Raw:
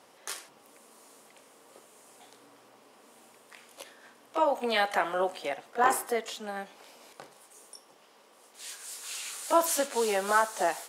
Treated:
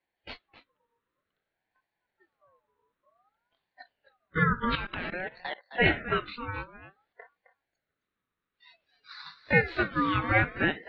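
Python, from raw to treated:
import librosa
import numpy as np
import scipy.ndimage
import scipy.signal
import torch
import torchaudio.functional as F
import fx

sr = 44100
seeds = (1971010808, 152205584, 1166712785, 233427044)

p1 = fx.noise_reduce_blind(x, sr, reduce_db=28)
p2 = scipy.signal.sosfilt(scipy.signal.cheby1(5, 1.0, 3300.0, 'lowpass', fs=sr, output='sos'), p1)
p3 = p2 + fx.echo_single(p2, sr, ms=263, db=-13.5, dry=0)
p4 = fx.level_steps(p3, sr, step_db=18, at=(4.75, 5.71))
p5 = fx.ring_lfo(p4, sr, carrier_hz=1000.0, swing_pct=30, hz=0.54)
y = p5 * librosa.db_to_amplitude(4.5)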